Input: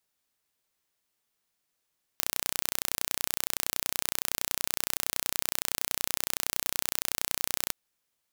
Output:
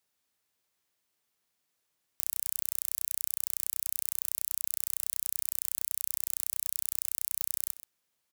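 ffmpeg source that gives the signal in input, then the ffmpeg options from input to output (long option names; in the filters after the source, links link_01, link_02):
-f lavfi -i "aevalsrc='0.891*eq(mod(n,1436),0)':duration=5.53:sample_rate=44100"
-filter_complex "[0:a]acrossover=split=5000[link_01][link_02];[link_01]aeval=exprs='(mod(8.41*val(0)+1,2)-1)/8.41':channel_layout=same[link_03];[link_03][link_02]amix=inputs=2:normalize=0,highpass=45,asplit=2[link_04][link_05];[link_05]adelay=128.3,volume=-13dB,highshelf=frequency=4000:gain=-2.89[link_06];[link_04][link_06]amix=inputs=2:normalize=0"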